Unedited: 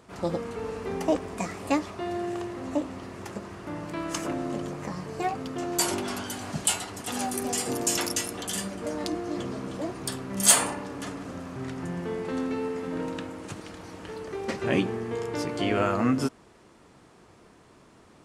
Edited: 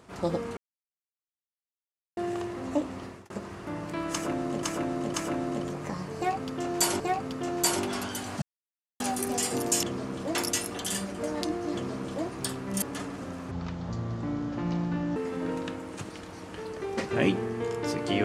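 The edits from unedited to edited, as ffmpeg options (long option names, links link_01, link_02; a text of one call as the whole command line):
ffmpeg -i in.wav -filter_complex "[0:a]asplit=14[link_01][link_02][link_03][link_04][link_05][link_06][link_07][link_08][link_09][link_10][link_11][link_12][link_13][link_14];[link_01]atrim=end=0.57,asetpts=PTS-STARTPTS,afade=type=out:start_time=0.566:duration=0.004:curve=hsin[link_15];[link_02]atrim=start=0.57:end=2.17,asetpts=PTS-STARTPTS,volume=0[link_16];[link_03]atrim=start=2.17:end=3.3,asetpts=PTS-STARTPTS,afade=type=in:duration=0.004:curve=hsin,afade=type=out:start_time=0.88:duration=0.25[link_17];[link_04]atrim=start=3.3:end=4.632,asetpts=PTS-STARTPTS,afade=type=in:duration=0.004:curve=hsin[link_18];[link_05]atrim=start=4.118:end=4.632[link_19];[link_06]atrim=start=4.118:end=5.982[link_20];[link_07]atrim=start=5.148:end=6.57,asetpts=PTS-STARTPTS,afade=type=out:start_time=1.418:duration=0.004:curve=hsin[link_21];[link_08]atrim=start=6.57:end=7.15,asetpts=PTS-STARTPTS,volume=0[link_22];[link_09]atrim=start=7.15:end=7.982,asetpts=PTS-STARTPTS,afade=type=in:duration=0.004:curve=hsin[link_23];[link_10]atrim=start=9.368:end=9.892[link_24];[link_11]atrim=start=7.978:end=10.452[link_25];[link_12]atrim=start=10.888:end=11.584[link_26];[link_13]atrim=start=11.58:end=12.67,asetpts=PTS-STARTPTS,asetrate=29106,aresample=44100[link_27];[link_14]atrim=start=12.666[link_28];[link_15][link_16][link_17][link_18]concat=n=4:v=0:a=1[link_29];[link_29][link_19]acrossfade=duration=0.004:curve1=hsin:curve2=hsin[link_30];[link_30][link_20]acrossfade=duration=0.004:curve1=hsin:curve2=hsin[link_31];[link_21][link_22][link_23]concat=n=3:v=0:a=1[link_32];[link_31][link_32]acrossfade=duration=0.004:curve1=hsin:curve2=hsin[link_33];[link_33][link_24]acrossfade=duration=0.004:curve1=hsin:curve2=hsin[link_34];[link_34][link_25]acrossfade=duration=0.004:curve1=hsin:curve2=hsin[link_35];[link_35][link_26]acrossfade=duration=0.004:curve1=hsin:curve2=hsin[link_36];[link_36][link_27]acrossfade=duration=0.004:curve1=hsin:curve2=hsin[link_37];[link_37][link_28]acrossfade=duration=0.004:curve1=hsin:curve2=hsin" out.wav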